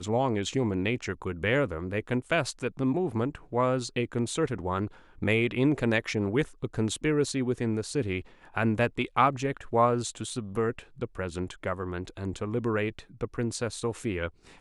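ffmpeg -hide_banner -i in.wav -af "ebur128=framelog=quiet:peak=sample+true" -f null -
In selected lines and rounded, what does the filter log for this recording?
Integrated loudness:
  I:         -29.4 LUFS
  Threshold: -39.4 LUFS
Loudness range:
  LRA:         4.8 LU
  Threshold: -49.2 LUFS
  LRA low:   -32.8 LUFS
  LRA high:  -28.0 LUFS
Sample peak:
  Peak:       -8.3 dBFS
True peak:
  Peak:       -8.3 dBFS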